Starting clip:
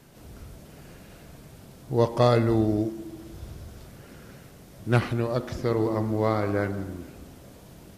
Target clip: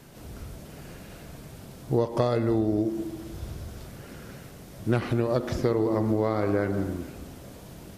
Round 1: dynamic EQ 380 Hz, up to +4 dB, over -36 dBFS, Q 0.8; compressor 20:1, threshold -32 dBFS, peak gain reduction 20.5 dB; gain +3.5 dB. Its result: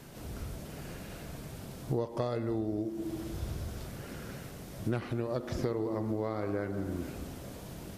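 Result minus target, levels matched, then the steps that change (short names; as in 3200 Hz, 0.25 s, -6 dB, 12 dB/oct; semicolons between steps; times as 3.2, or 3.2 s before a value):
compressor: peak gain reduction +8.5 dB
change: compressor 20:1, threshold -23 dBFS, peak gain reduction 12 dB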